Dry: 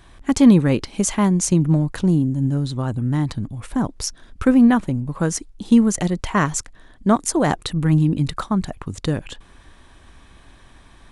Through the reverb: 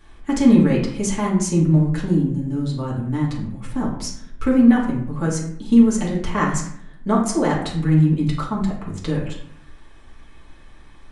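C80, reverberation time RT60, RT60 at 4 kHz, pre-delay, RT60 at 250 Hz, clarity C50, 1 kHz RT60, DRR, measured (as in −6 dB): 8.5 dB, 0.65 s, 0.45 s, 4 ms, 0.90 s, 5.0 dB, 0.65 s, −6.0 dB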